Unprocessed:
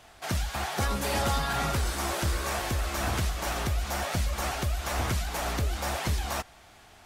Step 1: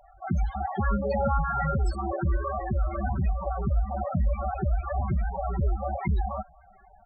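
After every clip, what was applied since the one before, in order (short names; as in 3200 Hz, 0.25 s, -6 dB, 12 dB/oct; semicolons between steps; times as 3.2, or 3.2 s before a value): comb 5.2 ms, depth 41%; loudest bins only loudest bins 8; gain +5 dB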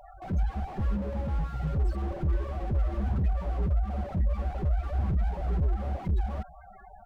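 compressor 16:1, threshold -27 dBFS, peak gain reduction 8 dB; slew limiter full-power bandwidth 4.2 Hz; gain +5.5 dB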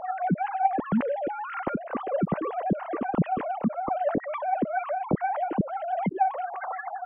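sine-wave speech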